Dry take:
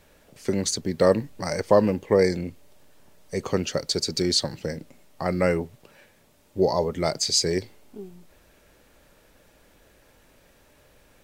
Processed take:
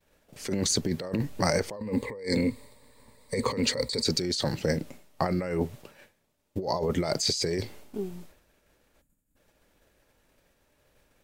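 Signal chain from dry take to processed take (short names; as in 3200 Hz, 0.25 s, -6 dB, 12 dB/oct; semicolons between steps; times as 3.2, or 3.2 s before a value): 9.01–9.36 spectral gain 320–6600 Hz -16 dB; expander -46 dBFS; 1.76–4.04 ripple EQ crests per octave 0.97, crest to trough 13 dB; negative-ratio compressor -29 dBFS, ratio -1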